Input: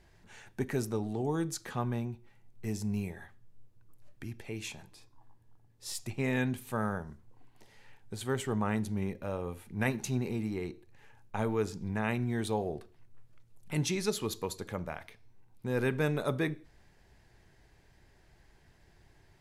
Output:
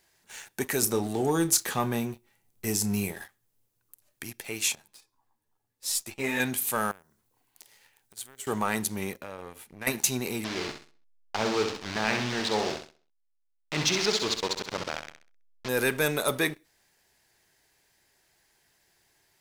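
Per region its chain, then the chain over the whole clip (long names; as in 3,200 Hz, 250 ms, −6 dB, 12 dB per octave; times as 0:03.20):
0:00.82–0:03.22: low-shelf EQ 420 Hz +6 dB + double-tracking delay 30 ms −13.5 dB
0:04.75–0:06.40: high-shelf EQ 3,900 Hz −5.5 dB + string-ensemble chorus
0:06.91–0:08.47: one scale factor per block 7 bits + downward compressor 8 to 1, threshold −50 dBFS
0:09.21–0:09.87: high-shelf EQ 6,900 Hz −11.5 dB + downward compressor 5 to 1, threshold −39 dBFS
0:10.44–0:15.69: hold until the input has moved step −34.5 dBFS + low-pass filter 5,200 Hz 24 dB per octave + repeating echo 65 ms, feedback 44%, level −7 dB
whole clip: RIAA equalisation recording; leveller curve on the samples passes 2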